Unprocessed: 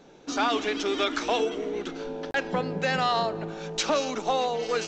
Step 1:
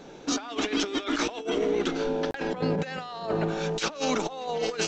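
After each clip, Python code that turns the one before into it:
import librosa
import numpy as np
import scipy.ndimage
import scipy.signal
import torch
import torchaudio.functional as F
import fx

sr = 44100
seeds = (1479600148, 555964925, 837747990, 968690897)

y = fx.over_compress(x, sr, threshold_db=-31.0, ratio=-0.5)
y = y * librosa.db_to_amplitude(3.0)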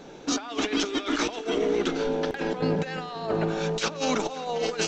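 y = fx.echo_heads(x, sr, ms=265, heads='first and second', feedback_pct=44, wet_db=-20.0)
y = y * librosa.db_to_amplitude(1.0)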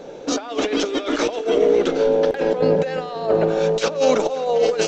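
y = fx.peak_eq(x, sr, hz=530.0, db=12.5, octaves=0.72)
y = y * librosa.db_to_amplitude(2.0)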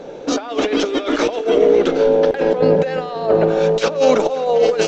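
y = fx.high_shelf(x, sr, hz=6400.0, db=-8.5)
y = y * librosa.db_to_amplitude(3.5)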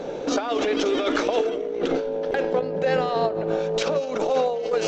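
y = fx.over_compress(x, sr, threshold_db=-21.0, ratio=-1.0)
y = y * librosa.db_to_amplitude(-3.0)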